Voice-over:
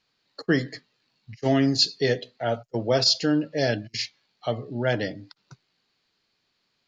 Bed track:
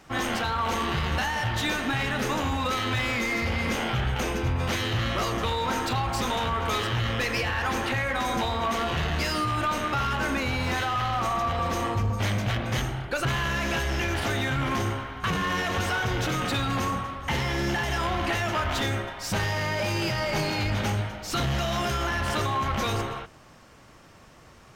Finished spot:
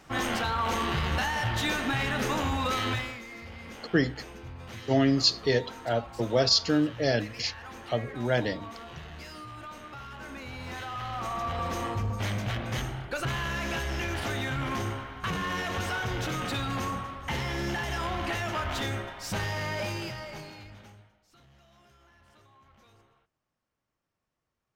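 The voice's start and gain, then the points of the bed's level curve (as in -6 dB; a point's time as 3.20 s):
3.45 s, -2.0 dB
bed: 2.91 s -1.5 dB
3.22 s -16.5 dB
10.08 s -16.5 dB
11.56 s -4.5 dB
19.83 s -4.5 dB
21.31 s -33 dB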